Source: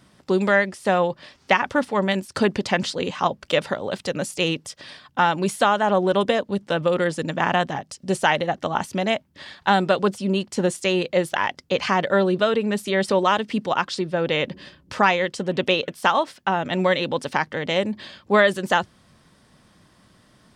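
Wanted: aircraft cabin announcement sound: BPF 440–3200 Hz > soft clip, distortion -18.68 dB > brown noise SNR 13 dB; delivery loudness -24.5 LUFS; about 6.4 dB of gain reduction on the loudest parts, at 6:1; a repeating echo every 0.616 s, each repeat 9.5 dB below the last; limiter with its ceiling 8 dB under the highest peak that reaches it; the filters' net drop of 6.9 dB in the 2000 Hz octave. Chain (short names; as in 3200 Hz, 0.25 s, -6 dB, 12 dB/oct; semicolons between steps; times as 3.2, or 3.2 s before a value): bell 2000 Hz -8.5 dB; compressor 6:1, threshold -21 dBFS; limiter -17.5 dBFS; BPF 440–3200 Hz; feedback echo 0.616 s, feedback 33%, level -9.5 dB; soft clip -21 dBFS; brown noise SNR 13 dB; gain +8.5 dB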